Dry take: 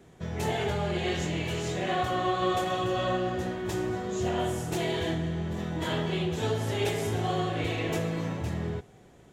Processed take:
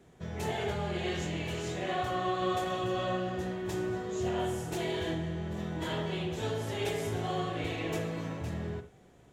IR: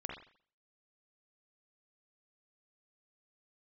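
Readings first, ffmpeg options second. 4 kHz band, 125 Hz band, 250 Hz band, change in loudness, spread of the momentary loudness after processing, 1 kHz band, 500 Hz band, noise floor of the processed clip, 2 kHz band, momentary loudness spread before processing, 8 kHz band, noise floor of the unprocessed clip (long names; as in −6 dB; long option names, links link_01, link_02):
−4.5 dB, −5.0 dB, −4.0 dB, −4.0 dB, 5 LU, −4.0 dB, −3.5 dB, −59 dBFS, −4.0 dB, 5 LU, −4.5 dB, −55 dBFS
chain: -filter_complex "[0:a]asplit=2[link_01][link_02];[1:a]atrim=start_sample=2205,atrim=end_sample=4410[link_03];[link_02][link_03]afir=irnorm=-1:irlink=0,volume=-2dB[link_04];[link_01][link_04]amix=inputs=2:normalize=0,volume=-8dB"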